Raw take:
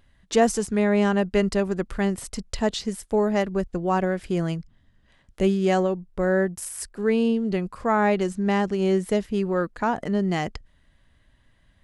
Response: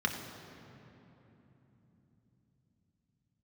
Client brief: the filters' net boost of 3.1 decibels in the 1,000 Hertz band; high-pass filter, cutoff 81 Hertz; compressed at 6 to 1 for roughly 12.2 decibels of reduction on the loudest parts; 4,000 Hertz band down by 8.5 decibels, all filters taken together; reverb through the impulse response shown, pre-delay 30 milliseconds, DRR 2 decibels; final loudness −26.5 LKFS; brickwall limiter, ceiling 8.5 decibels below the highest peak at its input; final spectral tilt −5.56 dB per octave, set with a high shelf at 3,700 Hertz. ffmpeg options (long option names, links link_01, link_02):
-filter_complex "[0:a]highpass=81,equalizer=frequency=1000:width_type=o:gain=5,highshelf=frequency=3700:gain=-7,equalizer=frequency=4000:width_type=o:gain=-8,acompressor=threshold=-26dB:ratio=6,alimiter=level_in=0.5dB:limit=-24dB:level=0:latency=1,volume=-0.5dB,asplit=2[link_01][link_02];[1:a]atrim=start_sample=2205,adelay=30[link_03];[link_02][link_03]afir=irnorm=-1:irlink=0,volume=-9.5dB[link_04];[link_01][link_04]amix=inputs=2:normalize=0,volume=5dB"